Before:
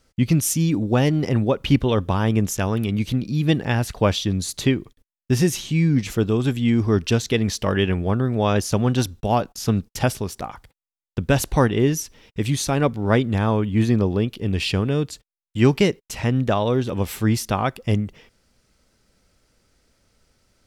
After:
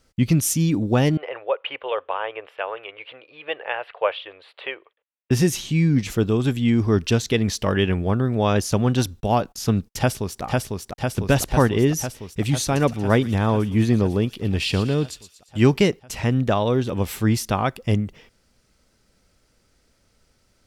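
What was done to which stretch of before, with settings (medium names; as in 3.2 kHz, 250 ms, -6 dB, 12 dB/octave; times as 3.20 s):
1.17–5.31 s: elliptic band-pass 500–2900 Hz
9.98–10.43 s: echo throw 500 ms, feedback 75%, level -2 dB
12.64–15.59 s: feedback echo behind a high-pass 117 ms, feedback 49%, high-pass 3.3 kHz, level -9 dB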